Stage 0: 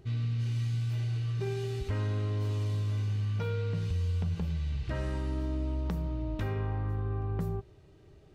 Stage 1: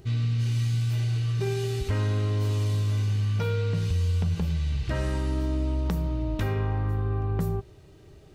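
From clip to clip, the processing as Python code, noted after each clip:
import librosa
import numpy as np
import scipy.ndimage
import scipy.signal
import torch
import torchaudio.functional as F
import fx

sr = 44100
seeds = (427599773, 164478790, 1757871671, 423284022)

y = fx.high_shelf(x, sr, hz=5100.0, db=7.5)
y = y * librosa.db_to_amplitude(5.5)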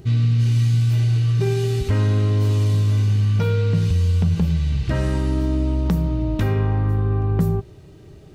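y = fx.peak_eq(x, sr, hz=180.0, db=6.0, octaves=1.9)
y = y * librosa.db_to_amplitude(4.0)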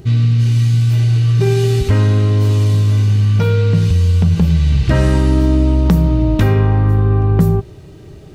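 y = fx.rider(x, sr, range_db=10, speed_s=0.5)
y = y * librosa.db_to_amplitude(6.5)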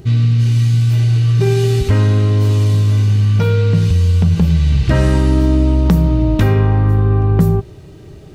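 y = x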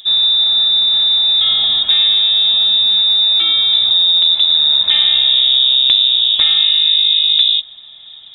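y = fx.freq_invert(x, sr, carrier_hz=3700)
y = y * librosa.db_to_amplitude(-1.5)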